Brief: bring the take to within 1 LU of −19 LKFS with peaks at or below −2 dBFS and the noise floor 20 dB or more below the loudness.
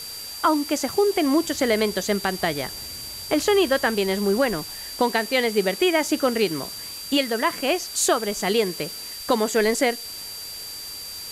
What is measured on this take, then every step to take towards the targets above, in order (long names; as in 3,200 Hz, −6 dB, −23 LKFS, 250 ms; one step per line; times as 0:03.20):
interfering tone 4,700 Hz; level of the tone −35 dBFS; background noise floor −36 dBFS; target noise floor −43 dBFS; integrated loudness −23.0 LKFS; sample peak −8.5 dBFS; target loudness −19.0 LKFS
→ notch filter 4,700 Hz, Q 30
broadband denoise 7 dB, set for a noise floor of −36 dBFS
level +4 dB